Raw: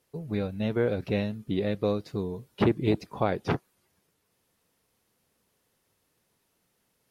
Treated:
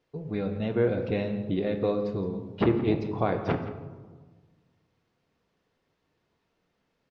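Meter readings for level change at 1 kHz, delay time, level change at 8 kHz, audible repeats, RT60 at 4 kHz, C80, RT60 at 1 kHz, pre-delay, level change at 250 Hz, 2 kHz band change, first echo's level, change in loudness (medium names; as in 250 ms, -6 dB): +0.5 dB, 169 ms, no reading, 1, 0.65 s, 9.5 dB, 1.3 s, 3 ms, +1.0 dB, -1.0 dB, -15.0 dB, +0.5 dB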